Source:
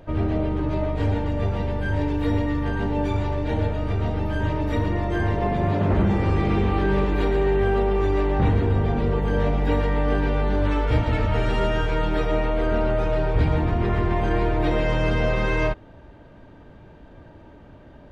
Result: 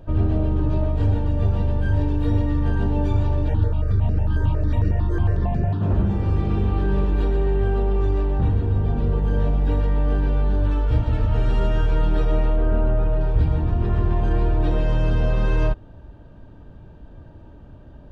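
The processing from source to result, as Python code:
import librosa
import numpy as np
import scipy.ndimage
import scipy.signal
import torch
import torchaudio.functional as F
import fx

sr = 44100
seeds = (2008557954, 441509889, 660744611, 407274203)

y = fx.phaser_held(x, sr, hz=11.0, low_hz=730.0, high_hz=3400.0, at=(3.48, 5.81), fade=0.02)
y = fx.bessel_lowpass(y, sr, hz=2300.0, order=2, at=(12.56, 13.21))
y = fx.low_shelf(y, sr, hz=170.0, db=11.5)
y = fx.rider(y, sr, range_db=10, speed_s=0.5)
y = fx.peak_eq(y, sr, hz=2100.0, db=-13.0, octaves=0.21)
y = F.gain(torch.from_numpy(y), -5.5).numpy()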